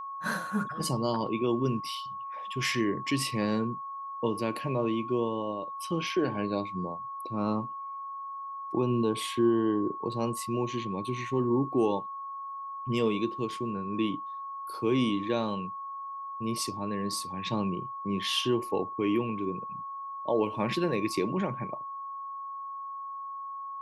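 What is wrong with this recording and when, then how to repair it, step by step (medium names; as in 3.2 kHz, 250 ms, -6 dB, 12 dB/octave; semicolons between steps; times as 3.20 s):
whine 1.1 kHz -36 dBFS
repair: band-stop 1.1 kHz, Q 30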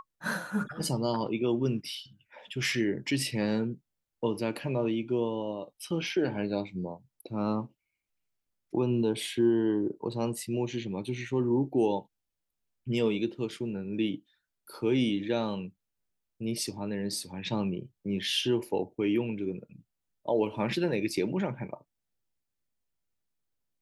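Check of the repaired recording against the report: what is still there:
nothing left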